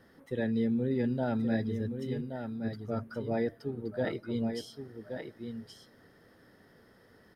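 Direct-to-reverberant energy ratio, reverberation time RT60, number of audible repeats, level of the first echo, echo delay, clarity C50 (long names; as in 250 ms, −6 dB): no reverb audible, no reverb audible, 1, −7.5 dB, 1,124 ms, no reverb audible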